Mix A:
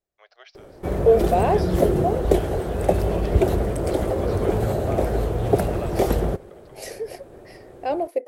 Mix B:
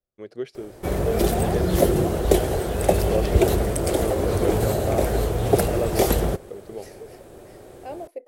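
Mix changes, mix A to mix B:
first voice: remove Chebyshev band-pass 660–5700 Hz, order 4; second voice -11.0 dB; background: add high shelf 2600 Hz +10.5 dB

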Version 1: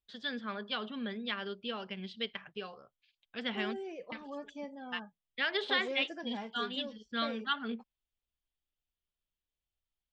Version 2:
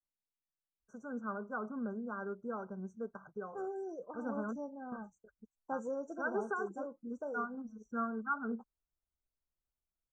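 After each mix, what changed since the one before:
first voice: entry +0.80 s; master: add brick-wall FIR band-stop 1600–5700 Hz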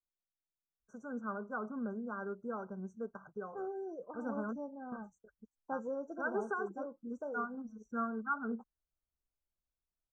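second voice: add air absorption 150 m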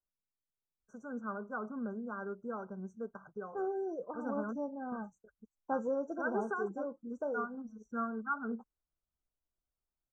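second voice +5.0 dB

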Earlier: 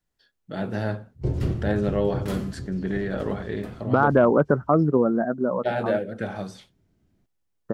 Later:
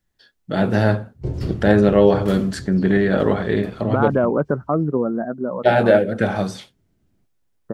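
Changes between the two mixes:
first voice +10.5 dB; second voice: add air absorption 340 m

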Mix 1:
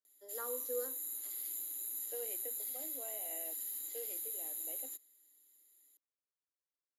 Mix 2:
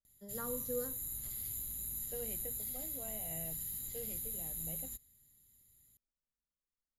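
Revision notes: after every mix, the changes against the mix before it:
master: remove steep high-pass 280 Hz 72 dB/oct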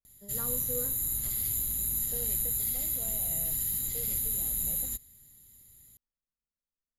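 background +10.5 dB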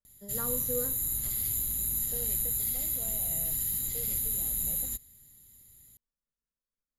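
first voice +4.0 dB

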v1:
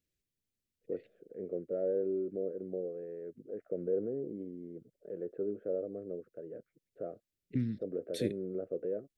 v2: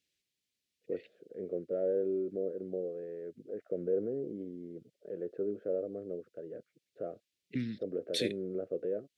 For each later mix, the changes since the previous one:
first voice: remove air absorption 430 m; second voice: add weighting filter D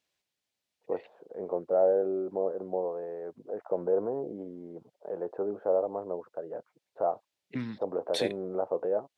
master: remove Butterworth band-stop 920 Hz, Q 0.6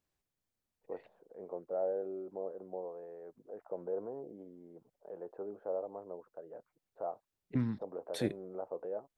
first voice -10.5 dB; second voice: remove weighting filter D

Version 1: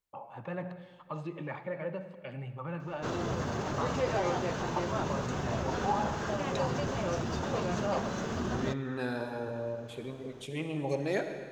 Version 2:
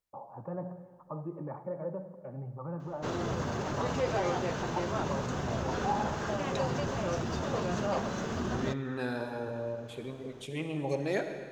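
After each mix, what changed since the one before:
first voice: add LPF 1100 Hz 24 dB/oct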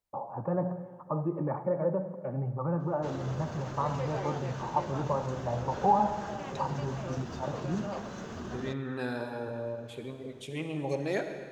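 first voice +8.0 dB; background -6.5 dB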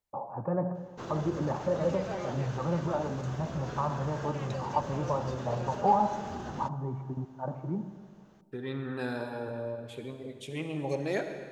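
background: entry -2.05 s

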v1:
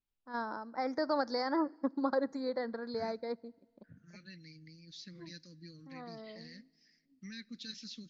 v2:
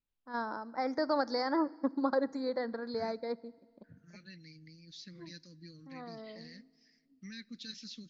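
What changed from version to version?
first voice: send +7.5 dB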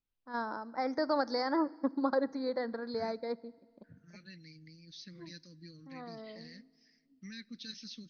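master: add brick-wall FIR low-pass 6500 Hz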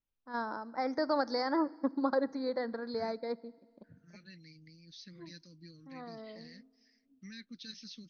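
second voice: send off

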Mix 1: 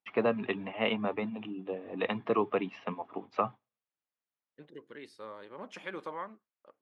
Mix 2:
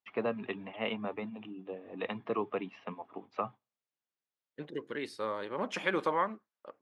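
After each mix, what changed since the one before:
first voice -5.0 dB; second voice +9.5 dB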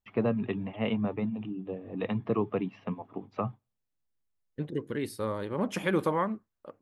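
second voice: remove LPF 6400 Hz 12 dB/oct; master: remove weighting filter A

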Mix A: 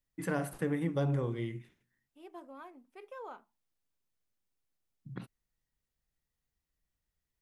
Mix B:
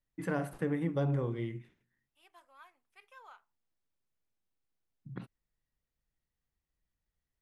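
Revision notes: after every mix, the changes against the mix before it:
first voice: add high shelf 4500 Hz -9 dB; second voice: add HPF 1400 Hz 12 dB/oct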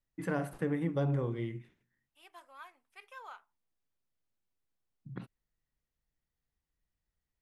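second voice +6.0 dB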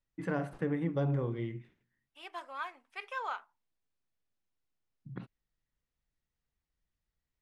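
second voice +11.5 dB; master: add air absorption 73 m

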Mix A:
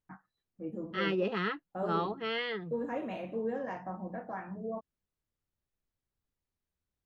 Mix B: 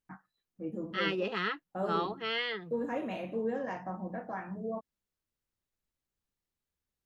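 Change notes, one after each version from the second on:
first voice: add low shelf 380 Hz +8 dB; master: add tilt +2 dB/oct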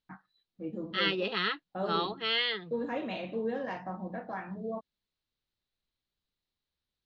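master: add synth low-pass 4000 Hz, resonance Q 3.5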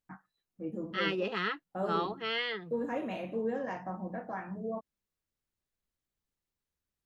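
master: remove synth low-pass 4000 Hz, resonance Q 3.5

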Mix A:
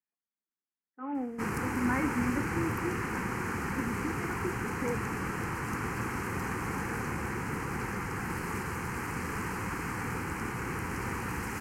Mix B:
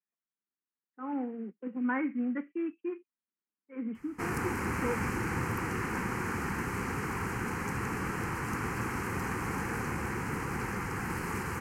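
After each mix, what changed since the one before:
background: entry +2.80 s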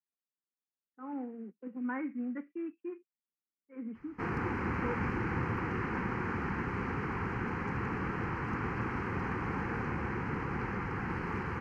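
speech -4.5 dB; master: add air absorption 270 m

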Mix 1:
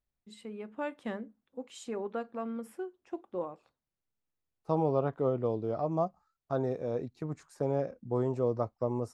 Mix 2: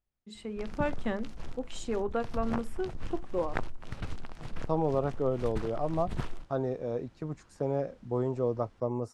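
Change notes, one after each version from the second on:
first voice +4.5 dB; background: unmuted; master: add LPF 9300 Hz 12 dB/oct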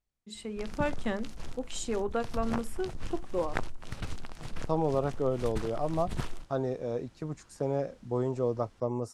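master: add high shelf 4600 Hz +10.5 dB

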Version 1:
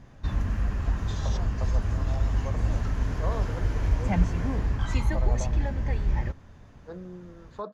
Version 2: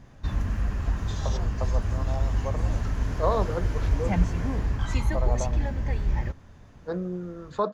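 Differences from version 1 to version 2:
first voice +5.5 dB; second voice +10.0 dB; master: add high shelf 6500 Hz +4 dB

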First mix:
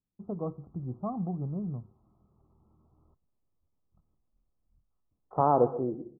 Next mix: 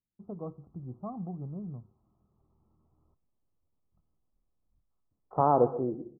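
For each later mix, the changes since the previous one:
first voice -5.0 dB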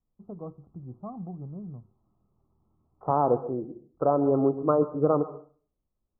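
second voice: entry -2.30 s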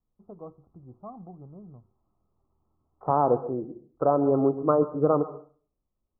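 first voice: add bell 160 Hz -8 dB 1.8 oct; second voice: remove air absorption 330 m

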